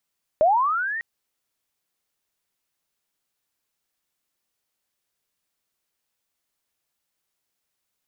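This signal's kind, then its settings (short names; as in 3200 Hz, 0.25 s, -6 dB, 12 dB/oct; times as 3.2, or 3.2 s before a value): chirp linear 590 Hz -> 1900 Hz -13 dBFS -> -26.5 dBFS 0.60 s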